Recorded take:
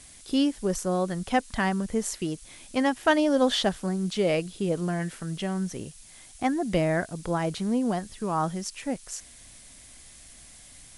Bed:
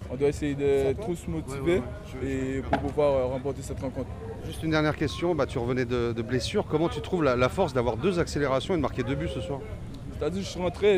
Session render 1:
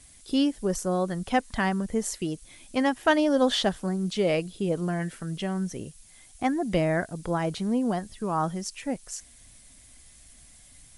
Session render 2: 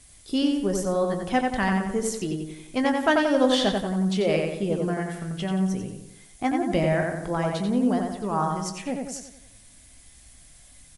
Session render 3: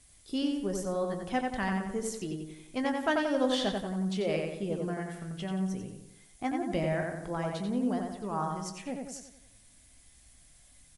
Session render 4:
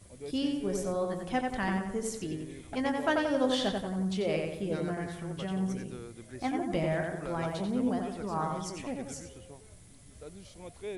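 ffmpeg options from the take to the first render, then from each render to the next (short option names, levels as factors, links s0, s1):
-af "afftdn=nr=6:nf=-50"
-filter_complex "[0:a]asplit=2[s0][s1];[s1]adelay=20,volume=0.282[s2];[s0][s2]amix=inputs=2:normalize=0,asplit=2[s3][s4];[s4]adelay=90,lowpass=f=3500:p=1,volume=0.708,asplit=2[s5][s6];[s6]adelay=90,lowpass=f=3500:p=1,volume=0.5,asplit=2[s7][s8];[s8]adelay=90,lowpass=f=3500:p=1,volume=0.5,asplit=2[s9][s10];[s10]adelay=90,lowpass=f=3500:p=1,volume=0.5,asplit=2[s11][s12];[s12]adelay=90,lowpass=f=3500:p=1,volume=0.5,asplit=2[s13][s14];[s14]adelay=90,lowpass=f=3500:p=1,volume=0.5,asplit=2[s15][s16];[s16]adelay=90,lowpass=f=3500:p=1,volume=0.5[s17];[s3][s5][s7][s9][s11][s13][s15][s17]amix=inputs=8:normalize=0"
-af "volume=0.422"
-filter_complex "[1:a]volume=0.126[s0];[0:a][s0]amix=inputs=2:normalize=0"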